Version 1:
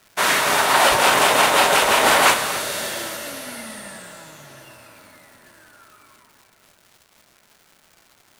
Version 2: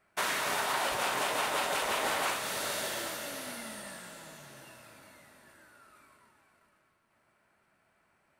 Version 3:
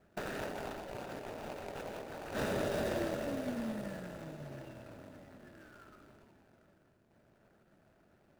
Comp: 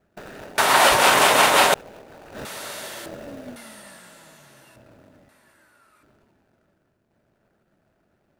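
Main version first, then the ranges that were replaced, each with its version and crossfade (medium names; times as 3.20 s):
3
0.58–1.74 s: from 1
2.45–3.06 s: from 2
3.56–4.76 s: from 2
5.29–6.03 s: from 2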